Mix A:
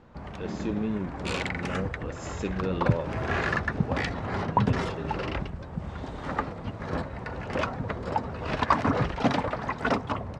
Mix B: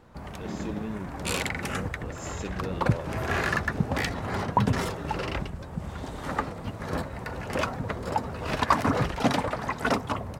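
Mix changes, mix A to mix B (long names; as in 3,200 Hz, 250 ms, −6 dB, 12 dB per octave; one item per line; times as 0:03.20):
speech −5.5 dB
master: remove high-frequency loss of the air 110 metres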